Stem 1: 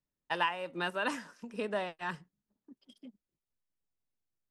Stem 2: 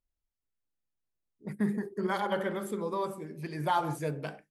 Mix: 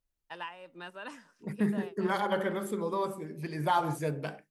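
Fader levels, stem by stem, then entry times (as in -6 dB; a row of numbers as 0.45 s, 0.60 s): -10.0 dB, +1.0 dB; 0.00 s, 0.00 s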